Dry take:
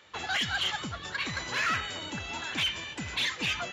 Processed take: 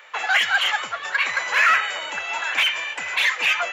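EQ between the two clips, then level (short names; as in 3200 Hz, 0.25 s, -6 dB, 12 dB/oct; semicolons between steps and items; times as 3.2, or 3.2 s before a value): RIAA curve recording; band shelf 1100 Hz +16 dB 2.9 oct; -5.0 dB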